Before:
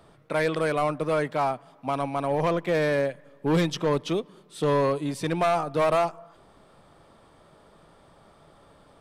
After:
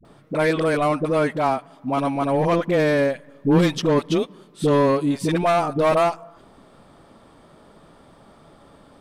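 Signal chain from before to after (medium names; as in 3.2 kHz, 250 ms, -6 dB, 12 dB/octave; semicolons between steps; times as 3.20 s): peaking EQ 250 Hz +6.5 dB 0.73 oct; phase dispersion highs, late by 50 ms, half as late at 470 Hz; trim +4 dB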